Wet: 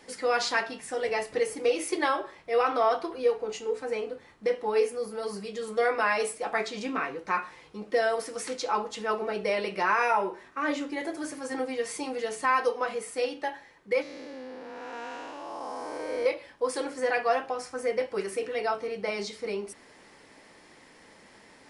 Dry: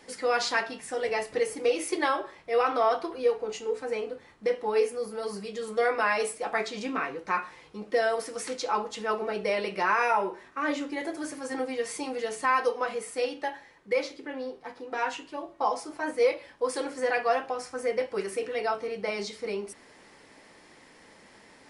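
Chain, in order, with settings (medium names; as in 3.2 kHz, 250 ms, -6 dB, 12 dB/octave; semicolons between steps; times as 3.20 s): 14.02–16.26 s: spectral blur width 473 ms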